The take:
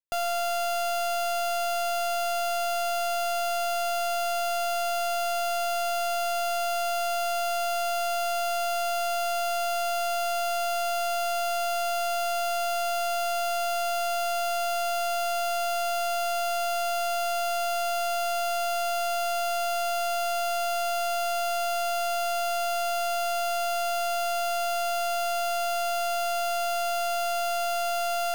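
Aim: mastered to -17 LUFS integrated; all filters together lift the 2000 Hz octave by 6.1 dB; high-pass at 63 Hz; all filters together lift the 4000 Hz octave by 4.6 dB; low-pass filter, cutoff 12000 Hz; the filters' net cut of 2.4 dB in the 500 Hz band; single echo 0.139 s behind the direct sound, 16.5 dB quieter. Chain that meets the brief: HPF 63 Hz; LPF 12000 Hz; bell 500 Hz -6 dB; bell 2000 Hz +8.5 dB; bell 4000 Hz +3 dB; echo 0.139 s -16.5 dB; gain +9 dB

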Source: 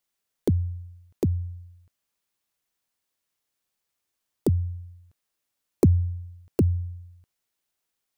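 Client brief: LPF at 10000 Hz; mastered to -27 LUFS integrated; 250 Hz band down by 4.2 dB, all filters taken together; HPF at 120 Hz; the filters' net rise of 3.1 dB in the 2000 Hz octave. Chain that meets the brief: HPF 120 Hz; LPF 10000 Hz; bell 250 Hz -5.5 dB; bell 2000 Hz +4 dB; gain +4.5 dB

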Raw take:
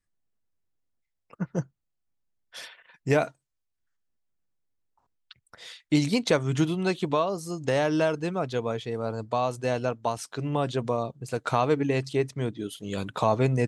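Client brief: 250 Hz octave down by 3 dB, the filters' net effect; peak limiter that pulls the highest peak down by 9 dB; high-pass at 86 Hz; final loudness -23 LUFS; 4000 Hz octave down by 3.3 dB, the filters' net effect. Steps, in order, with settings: HPF 86 Hz; bell 250 Hz -4 dB; bell 4000 Hz -4 dB; gain +8.5 dB; limiter -10 dBFS

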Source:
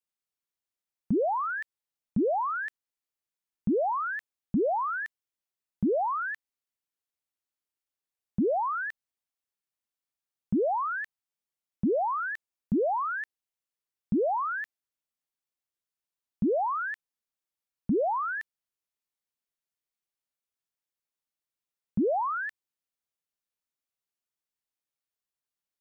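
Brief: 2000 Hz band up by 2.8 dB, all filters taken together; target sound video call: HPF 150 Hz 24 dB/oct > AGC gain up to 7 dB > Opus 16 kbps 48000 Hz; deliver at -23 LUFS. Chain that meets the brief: HPF 150 Hz 24 dB/oct; bell 2000 Hz +4 dB; AGC gain up to 7 dB; gain +1.5 dB; Opus 16 kbps 48000 Hz

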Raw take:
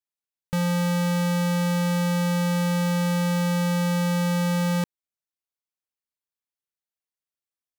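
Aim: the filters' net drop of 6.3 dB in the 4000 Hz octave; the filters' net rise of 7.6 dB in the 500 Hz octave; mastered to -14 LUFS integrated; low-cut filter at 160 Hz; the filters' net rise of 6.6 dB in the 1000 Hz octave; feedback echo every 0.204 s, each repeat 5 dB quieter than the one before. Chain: HPF 160 Hz; bell 500 Hz +6.5 dB; bell 1000 Hz +6.5 dB; bell 4000 Hz -9 dB; feedback echo 0.204 s, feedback 56%, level -5 dB; gain +7 dB

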